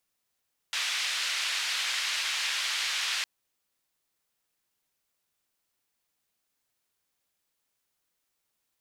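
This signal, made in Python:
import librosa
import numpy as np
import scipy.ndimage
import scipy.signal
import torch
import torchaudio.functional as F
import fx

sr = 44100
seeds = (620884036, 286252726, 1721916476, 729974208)

y = fx.band_noise(sr, seeds[0], length_s=2.51, low_hz=1900.0, high_hz=3800.0, level_db=-30.5)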